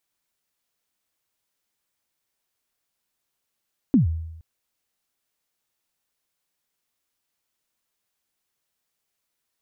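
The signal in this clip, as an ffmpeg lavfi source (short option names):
-f lavfi -i "aevalsrc='0.282*pow(10,-3*t/0.91)*sin(2*PI*(300*0.127/log(81/300)*(exp(log(81/300)*min(t,0.127)/0.127)-1)+81*max(t-0.127,0)))':d=0.47:s=44100"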